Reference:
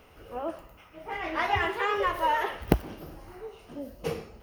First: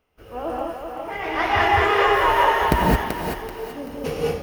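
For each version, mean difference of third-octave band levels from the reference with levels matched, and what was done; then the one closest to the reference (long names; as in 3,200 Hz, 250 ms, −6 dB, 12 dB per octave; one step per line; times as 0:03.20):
6.5 dB: noise gate −50 dBFS, range −20 dB
in parallel at −9 dB: wrap-around overflow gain 13 dB
on the sum: feedback echo with a high-pass in the loop 384 ms, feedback 34%, high-pass 420 Hz, level −3.5 dB
reverb whose tail is shaped and stops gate 240 ms rising, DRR −3 dB
level +1 dB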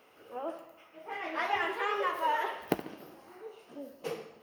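2.5 dB: high-pass filter 270 Hz 12 dB per octave
on a send: bucket-brigade delay 71 ms, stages 2,048, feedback 58%, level −13 dB
on the sum: flanger 1.9 Hz, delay 5 ms, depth 5.4 ms, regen −75%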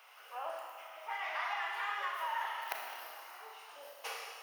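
13.5 dB: high-pass filter 820 Hz 24 dB per octave
downward compressor 5 to 1, threshold −38 dBFS, peak gain reduction 13 dB
four-comb reverb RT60 1.9 s, combs from 26 ms, DRR 0 dB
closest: second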